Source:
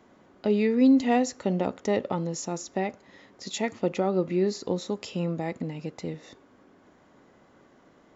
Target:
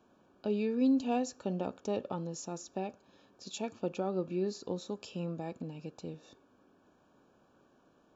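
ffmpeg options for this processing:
-af "asuperstop=centerf=2000:order=12:qfactor=4.5,volume=-8.5dB"

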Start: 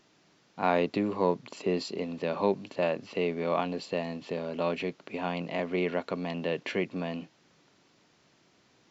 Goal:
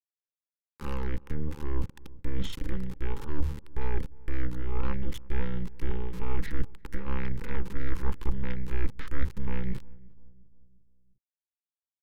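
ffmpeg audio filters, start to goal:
-filter_complex "[0:a]aeval=exprs='0.282*(cos(1*acos(clip(val(0)/0.282,-1,1)))-cos(1*PI/2))+0.112*(cos(2*acos(clip(val(0)/0.282,-1,1)))-cos(2*PI/2))+0.1*(cos(6*acos(clip(val(0)/0.282,-1,1)))-cos(6*PI/2))':c=same,bass=f=250:g=12,treble=f=4k:g=-5,bandreject=f=50:t=h:w=6,bandreject=f=100:t=h:w=6,bandreject=f=150:t=h:w=6,agate=range=-33dB:threshold=-37dB:ratio=3:detection=peak,areverse,acompressor=threshold=-27dB:ratio=8,areverse,asubboost=boost=4.5:cutoff=64,aeval=exprs='val(0)*gte(abs(val(0)),0.0158)':c=same,asuperstop=centerf=890:order=12:qfactor=2.6,asplit=2[a][b];[b]adelay=259,lowpass=f=870:p=1,volume=-21dB,asplit=2[c][d];[d]adelay=259,lowpass=f=870:p=1,volume=0.5,asplit=2[e][f];[f]adelay=259,lowpass=f=870:p=1,volume=0.5,asplit=2[g][h];[h]adelay=259,lowpass=f=870:p=1,volume=0.5[i];[a][c][e][g][i]amix=inputs=5:normalize=0,asetrate=32667,aresample=44100"

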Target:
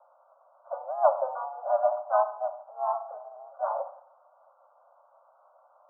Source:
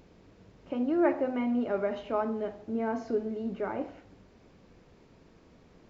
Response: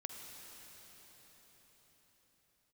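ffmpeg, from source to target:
-filter_complex "[0:a]asuperpass=centerf=820:order=20:qfactor=1.2,asplit=2[a][b];[b]asetrate=52444,aresample=44100,atempo=0.840896,volume=-4dB[c];[a][c]amix=inputs=2:normalize=0,volume=6dB"

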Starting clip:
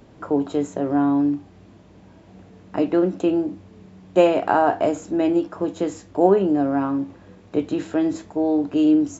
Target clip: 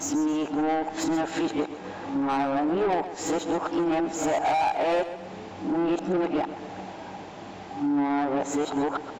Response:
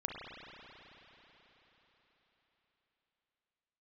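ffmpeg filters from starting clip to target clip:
-filter_complex "[0:a]areverse,equalizer=f=810:w=6.6:g=11,acompressor=threshold=-27dB:ratio=5,asplit=2[a][b];[b]highpass=f=720:p=1,volume=20dB,asoftclip=type=tanh:threshold=-17.5dB[c];[a][c]amix=inputs=2:normalize=0,lowpass=f=5.9k:p=1,volume=-6dB,asplit=2[d][e];[e]aecho=0:1:132|264|396|528|660:0.237|0.114|0.0546|0.0262|0.0126[f];[d][f]amix=inputs=2:normalize=0"

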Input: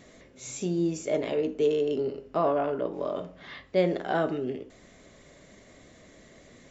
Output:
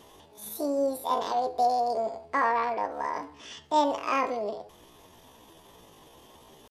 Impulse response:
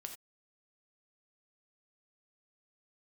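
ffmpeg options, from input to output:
-af "asetrate=72056,aresample=44100,atempo=0.612027"

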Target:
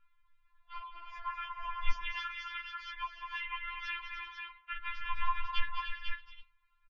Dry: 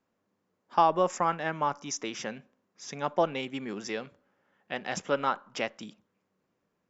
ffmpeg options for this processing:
-filter_complex "[0:a]acompressor=threshold=-33dB:ratio=10,aecho=1:1:206|301|397|496:0.355|0.335|0.126|0.447,alimiter=level_in=2.5dB:limit=-24dB:level=0:latency=1:release=176,volume=-2.5dB,lowshelf=f=370:t=q:w=1.5:g=7.5,highpass=f=270:t=q:w=0.5412,highpass=f=270:t=q:w=1.307,lowpass=f=3.6k:t=q:w=0.5176,lowpass=f=3.6k:t=q:w=0.7071,lowpass=f=3.6k:t=q:w=1.932,afreqshift=-270,asplit=3[a][b][c];[a]afade=t=out:st=2.1:d=0.02[d];[b]highpass=41,afade=t=in:st=2.1:d=0.02,afade=t=out:st=4.74:d=0.02[e];[c]afade=t=in:st=4.74:d=0.02[f];[d][e][f]amix=inputs=3:normalize=0,afftfilt=real='re*(1-between(b*sr/4096,240,730))':imag='im*(1-between(b*sr/4096,240,730))':win_size=4096:overlap=0.75,equalizer=f=580:w=3.1:g=8,afftfilt=real='re*4*eq(mod(b,16),0)':imag='im*4*eq(mod(b,16),0)':win_size=2048:overlap=0.75,volume=10.5dB"

